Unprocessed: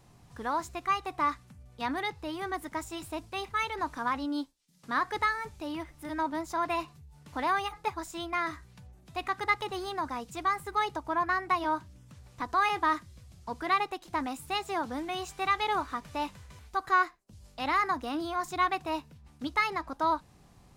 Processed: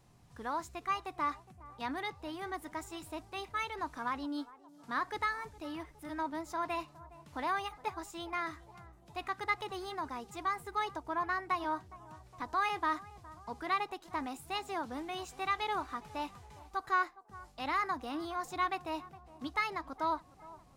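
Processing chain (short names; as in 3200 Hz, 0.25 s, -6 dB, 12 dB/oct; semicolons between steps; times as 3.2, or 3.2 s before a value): narrowing echo 0.413 s, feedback 67%, band-pass 630 Hz, level -18 dB; gain -5.5 dB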